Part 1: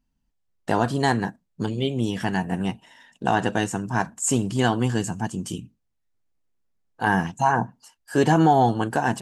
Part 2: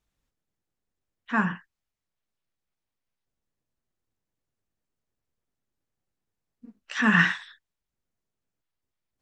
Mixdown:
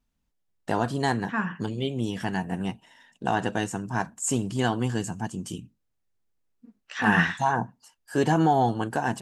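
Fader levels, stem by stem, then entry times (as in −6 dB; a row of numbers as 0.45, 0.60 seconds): −4.0, −3.5 decibels; 0.00, 0.00 seconds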